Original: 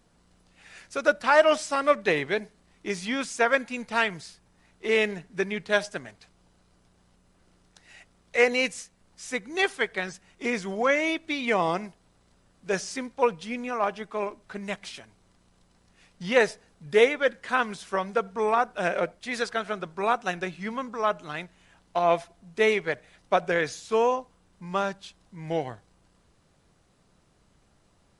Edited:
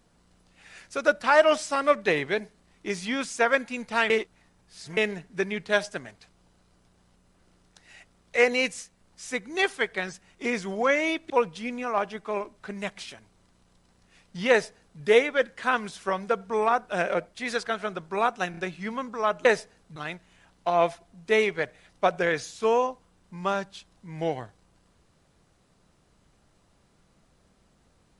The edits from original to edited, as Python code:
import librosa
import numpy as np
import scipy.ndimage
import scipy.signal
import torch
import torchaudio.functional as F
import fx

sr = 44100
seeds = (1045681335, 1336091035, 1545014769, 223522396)

y = fx.edit(x, sr, fx.reverse_span(start_s=4.1, length_s=0.87),
    fx.cut(start_s=11.3, length_s=1.86),
    fx.duplicate(start_s=16.36, length_s=0.51, to_s=21.25),
    fx.stutter(start_s=20.37, slice_s=0.03, count=3), tone=tone)